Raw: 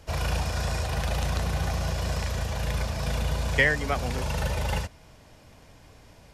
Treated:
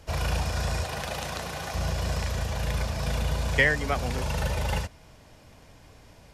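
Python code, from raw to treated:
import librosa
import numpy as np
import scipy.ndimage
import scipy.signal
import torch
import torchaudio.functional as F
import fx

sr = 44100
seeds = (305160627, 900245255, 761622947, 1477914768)

y = fx.highpass(x, sr, hz=fx.line((0.83, 210.0), (1.74, 450.0)), slope=6, at=(0.83, 1.74), fade=0.02)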